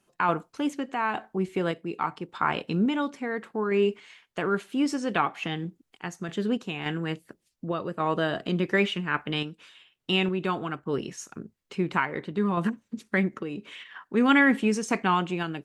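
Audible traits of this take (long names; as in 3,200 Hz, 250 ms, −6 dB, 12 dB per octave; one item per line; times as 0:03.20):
sample-and-hold tremolo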